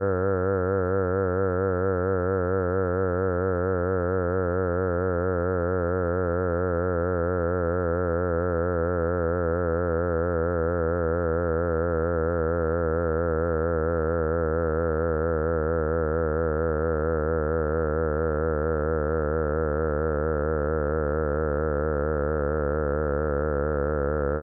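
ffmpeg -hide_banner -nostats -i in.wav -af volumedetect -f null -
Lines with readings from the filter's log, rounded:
mean_volume: -24.7 dB
max_volume: -13.4 dB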